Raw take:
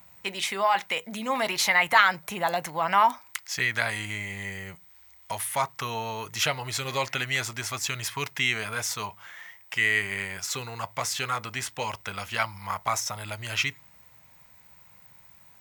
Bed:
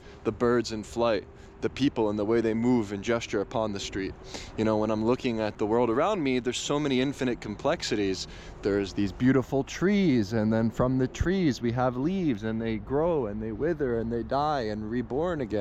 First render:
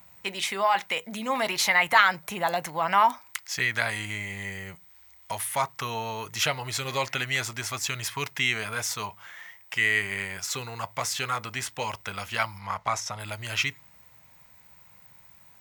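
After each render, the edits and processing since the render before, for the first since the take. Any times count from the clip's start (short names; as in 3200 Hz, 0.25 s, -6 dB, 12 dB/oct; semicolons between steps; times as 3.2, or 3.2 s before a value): 12.59–13.2 air absorption 51 m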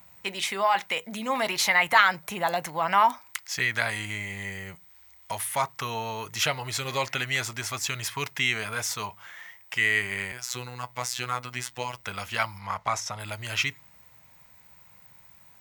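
10.32–12.04 robotiser 124 Hz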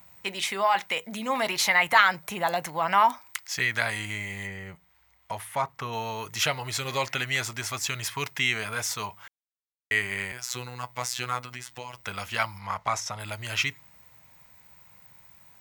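4.46–5.92 high shelf 3900 Hz -> 2700 Hz -11.5 dB; 9.28–9.91 mute; 11.4–12.06 compressor 3:1, threshold -35 dBFS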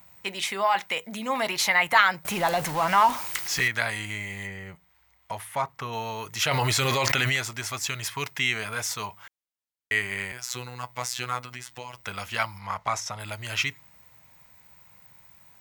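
2.25–3.68 zero-crossing step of -28.5 dBFS; 6.51–7.36 fast leveller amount 100%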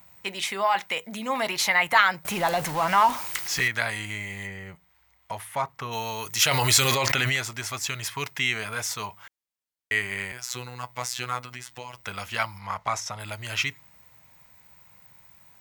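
5.91–6.95 high shelf 3700 Hz +10 dB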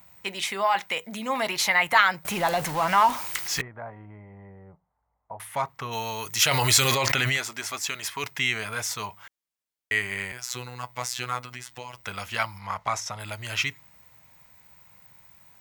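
3.61–5.4 ladder low-pass 1100 Hz, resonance 30%; 7.37–8.24 bell 120 Hz -14.5 dB 0.55 oct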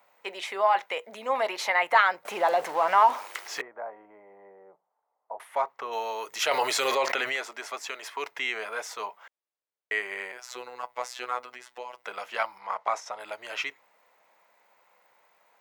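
HPF 450 Hz 24 dB/oct; tilt -4 dB/oct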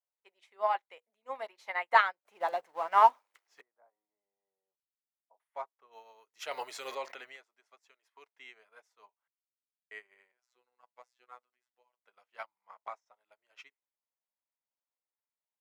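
upward expander 2.5:1, over -42 dBFS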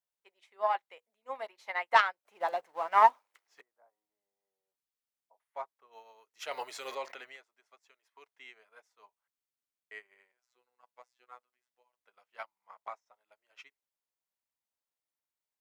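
self-modulated delay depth 0.069 ms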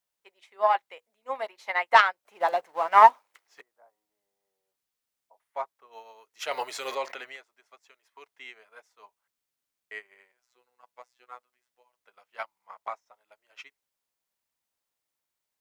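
gain +7 dB; limiter -3 dBFS, peak gain reduction 2 dB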